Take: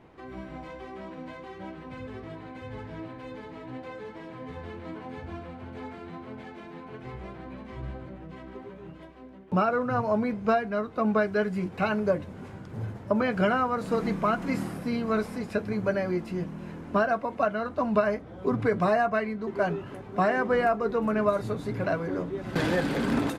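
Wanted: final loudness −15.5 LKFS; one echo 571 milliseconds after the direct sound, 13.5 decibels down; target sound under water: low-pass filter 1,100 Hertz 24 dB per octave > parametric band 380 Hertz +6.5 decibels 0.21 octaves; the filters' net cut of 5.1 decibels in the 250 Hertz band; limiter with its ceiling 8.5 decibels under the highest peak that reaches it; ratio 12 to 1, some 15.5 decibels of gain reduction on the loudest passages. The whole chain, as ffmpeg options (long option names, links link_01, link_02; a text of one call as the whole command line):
ffmpeg -i in.wav -af "equalizer=frequency=250:width_type=o:gain=-7.5,acompressor=threshold=-36dB:ratio=12,alimiter=level_in=8dB:limit=-24dB:level=0:latency=1,volume=-8dB,lowpass=frequency=1100:width=0.5412,lowpass=frequency=1100:width=1.3066,equalizer=frequency=380:width_type=o:width=0.21:gain=6.5,aecho=1:1:571:0.211,volume=27dB" out.wav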